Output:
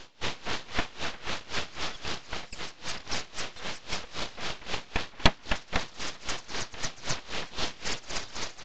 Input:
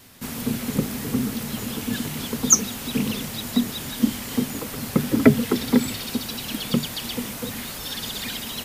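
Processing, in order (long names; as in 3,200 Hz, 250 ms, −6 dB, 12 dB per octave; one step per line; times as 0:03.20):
high-pass filter 480 Hz 12 dB per octave
high-frequency loss of the air 190 metres
speech leveller within 5 dB 0.5 s
parametric band 1,600 Hz +14.5 dB 2.7 octaves
full-wave rectification
downsampling to 16,000 Hz
tremolo with a sine in dB 3.8 Hz, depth 20 dB
level −1 dB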